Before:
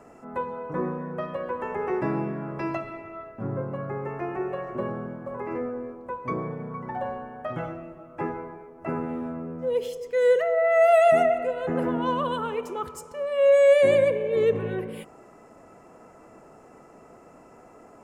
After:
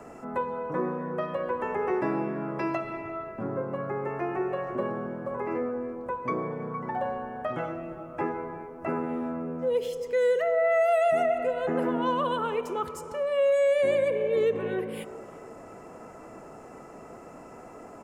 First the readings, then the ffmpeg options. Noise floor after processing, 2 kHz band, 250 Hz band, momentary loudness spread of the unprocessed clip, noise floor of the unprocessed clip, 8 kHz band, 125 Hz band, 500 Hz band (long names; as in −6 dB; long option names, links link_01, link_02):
−46 dBFS, −2.5 dB, −0.5 dB, 18 LU, −51 dBFS, can't be measured, −4.5 dB, −3.5 dB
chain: -filter_complex "[0:a]acrossover=split=190|3100[link_01][link_02][link_03];[link_01]acompressor=threshold=-49dB:ratio=4[link_04];[link_02]acompressor=threshold=-21dB:ratio=4[link_05];[link_03]acompressor=threshold=-47dB:ratio=4[link_06];[link_04][link_05][link_06]amix=inputs=3:normalize=0,asplit=2[link_07][link_08];[link_08]adelay=346,lowpass=frequency=2000:poles=1,volume=-21dB,asplit=2[link_09][link_10];[link_10]adelay=346,lowpass=frequency=2000:poles=1,volume=0.52,asplit=2[link_11][link_12];[link_12]adelay=346,lowpass=frequency=2000:poles=1,volume=0.52,asplit=2[link_13][link_14];[link_14]adelay=346,lowpass=frequency=2000:poles=1,volume=0.52[link_15];[link_07][link_09][link_11][link_13][link_15]amix=inputs=5:normalize=0,asplit=2[link_16][link_17];[link_17]acompressor=threshold=-39dB:ratio=6,volume=0.5dB[link_18];[link_16][link_18]amix=inputs=2:normalize=0,volume=-1.5dB"